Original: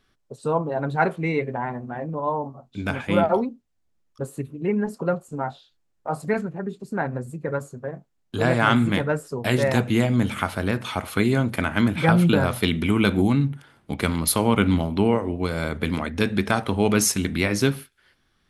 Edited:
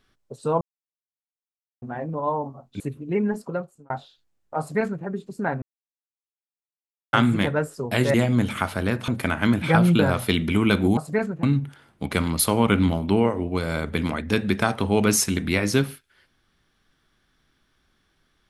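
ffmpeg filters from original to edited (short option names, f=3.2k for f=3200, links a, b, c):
-filter_complex "[0:a]asplit=11[a][b][c][d][e][f][g][h][i][j][k];[a]atrim=end=0.61,asetpts=PTS-STARTPTS,afade=t=out:st=0.606:d=0.004:c=hsin[l];[b]atrim=start=0.61:end=1.82,asetpts=PTS-STARTPTS,volume=0[m];[c]atrim=start=1.82:end=2.802,asetpts=PTS-STARTPTS,afade=t=in:d=0.004:c=hsin[n];[d]atrim=start=4.328:end=5.43,asetpts=PTS-STARTPTS,afade=t=out:st=0.502:d=0.6[o];[e]atrim=start=5.43:end=7.15,asetpts=PTS-STARTPTS,afade=t=in:d=0.004:c=hsin,afade=t=out:st=1.716:d=0.004:c=hsin[p];[f]atrim=start=7.15:end=8.66,asetpts=PTS-STARTPTS,volume=0[q];[g]atrim=start=8.66:end=9.672,asetpts=PTS-STARTPTS,afade=t=in:d=0.004:c=hsin[r];[h]atrim=start=9.948:end=10.892[s];[i]atrim=start=11.418:end=13.312[t];[j]atrim=start=6.118:end=6.582[u];[k]atrim=start=13.308[v];[l][m][n]concat=n=3:v=0:a=1[w];[o][p][q][r]concat=n=4:v=0:a=1[x];[w][x]acrossfade=d=0.004:c1=hsin:c2=hsin[y];[y][s]acrossfade=d=0.004:c1=hsin:c2=hsin[z];[z][t]acrossfade=d=0.004:c1=hsin:c2=hsin[aa];[aa][u]acrossfade=d=0.004:c1=hsin:c2=hsin[ab];[ab][v]acrossfade=d=0.004:c1=hsin:c2=hsin"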